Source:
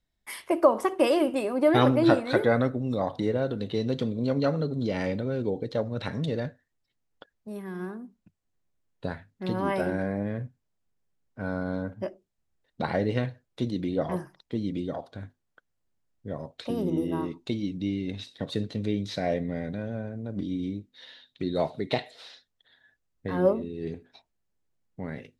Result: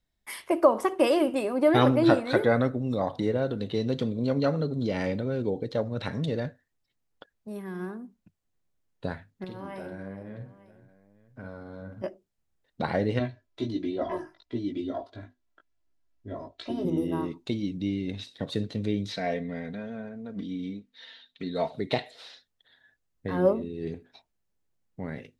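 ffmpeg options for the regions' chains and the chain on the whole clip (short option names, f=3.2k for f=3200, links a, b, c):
-filter_complex "[0:a]asettb=1/sr,asplit=3[a][b][c];[a]atrim=end=9.444[d];[b]atrim=start=9.44:end=12.04,asetpts=PTS-STARTPTS,afade=t=in:d=0.004:c=qsin,afade=t=out:st=2.596:d=0.004:c=qsin,acompressor=threshold=-38dB:ratio=4:attack=3.2:release=140:knee=1:detection=peak,aecho=1:1:52|420|900:0.473|0.141|0.106,atrim=end_sample=114660[e];[c]atrim=start=12.036[f];[d][e]acrossfade=d=0.004:c1=hsin:c2=qsin[g];[g][f]acrossfade=d=0.004:c1=qsin:c2=hsin,asettb=1/sr,asplit=3[h][i][j];[h]atrim=end=13.194[k];[i]atrim=start=13.19:end=16.85,asetpts=PTS-STARTPTS,afade=t=in:d=0.004:c=qsin,afade=t=out:st=3.656:d=0.004:c=qsin,lowpass=6.4k,aecho=1:1:3:0.87,atrim=end_sample=161406,flanger=delay=16:depth=3:speed=1.4[l];[j]atrim=start=16.846[m];[k][l]acrossfade=d=0.004:c1=hsin:c2=qsin[n];[n][m]acrossfade=d=0.004:c1=qsin:c2=hsin,asettb=1/sr,asplit=3[o][p][q];[o]atrim=end=19.124[r];[p]atrim=start=19.12:end=21.72,asetpts=PTS-STARTPTS,afade=t=in:d=0.004:c=qsin,afade=t=out:st=2.596:d=0.004:c=qsin,lowpass=f=2k:p=1,tiltshelf=f=1.1k:g=-6,aecho=1:1:4.4:0.65,atrim=end_sample=114660[s];[q]atrim=start=21.716[t];[r][s]acrossfade=d=0.004:c1=hsin:c2=qsin[u];[u][t]acrossfade=d=0.004:c1=qsin:c2=hsin"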